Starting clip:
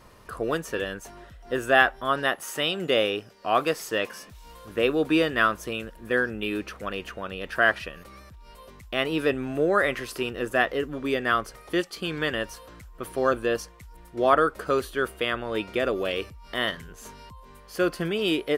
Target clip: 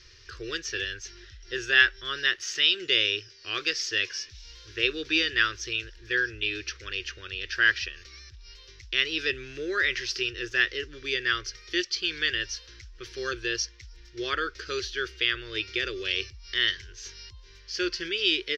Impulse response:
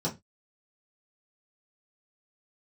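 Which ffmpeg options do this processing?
-af "firequalizer=gain_entry='entry(100,0);entry(160,-20);entry(230,-25);entry(360,-3);entry(690,-30);entry(1600,1);entry(5600,14);entry(8800,-24)':delay=0.05:min_phase=1"

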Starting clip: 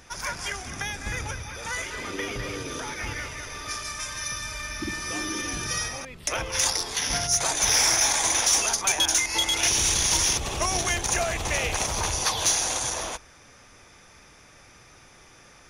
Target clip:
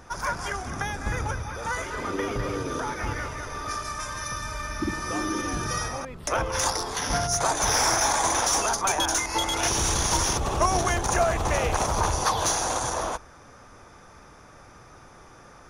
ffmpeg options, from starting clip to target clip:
ffmpeg -i in.wav -af "highshelf=frequency=1700:width_type=q:width=1.5:gain=-8,volume=4.5dB" out.wav

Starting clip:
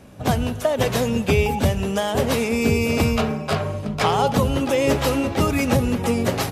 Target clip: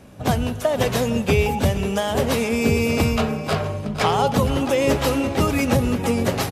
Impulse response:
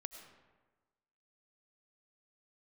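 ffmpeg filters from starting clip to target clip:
-af "aecho=1:1:465:0.168"

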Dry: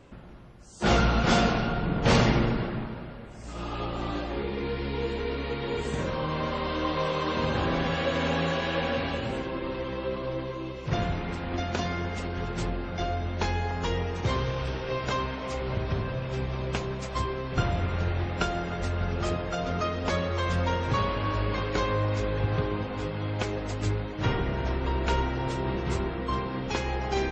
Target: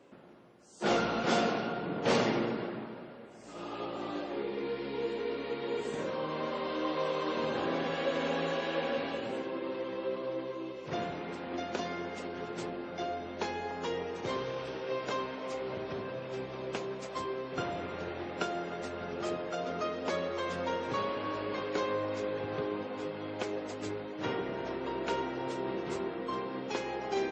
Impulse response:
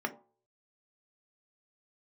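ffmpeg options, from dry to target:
-filter_complex "[0:a]highpass=330,acrossover=split=560[link_01][link_02];[link_01]acontrast=72[link_03];[link_03][link_02]amix=inputs=2:normalize=0,volume=-6.5dB"

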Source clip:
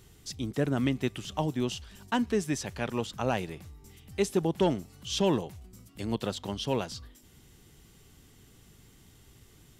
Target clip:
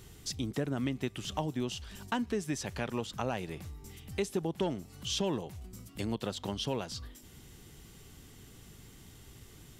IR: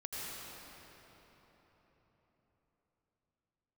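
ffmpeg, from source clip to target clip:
-af "acompressor=threshold=-37dB:ratio=2.5,volume=3.5dB"

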